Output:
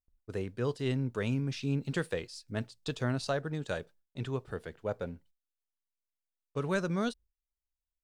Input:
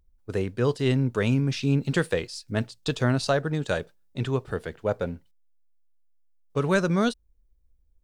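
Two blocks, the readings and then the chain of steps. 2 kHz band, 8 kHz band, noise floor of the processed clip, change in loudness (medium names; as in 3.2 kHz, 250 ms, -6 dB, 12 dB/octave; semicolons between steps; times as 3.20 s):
-8.5 dB, -8.5 dB, under -85 dBFS, -8.5 dB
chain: gate with hold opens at -52 dBFS; trim -8.5 dB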